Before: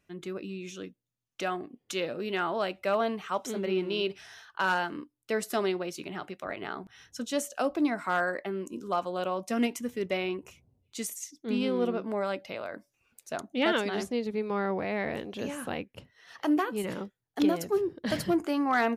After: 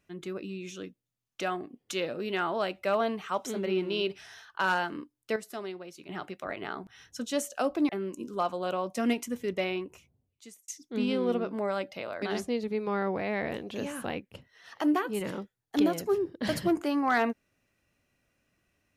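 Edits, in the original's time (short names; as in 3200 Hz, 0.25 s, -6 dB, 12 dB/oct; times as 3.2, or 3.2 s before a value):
5.36–6.09 gain -9.5 dB
7.89–8.42 cut
10.19–11.21 fade out
12.75–13.85 cut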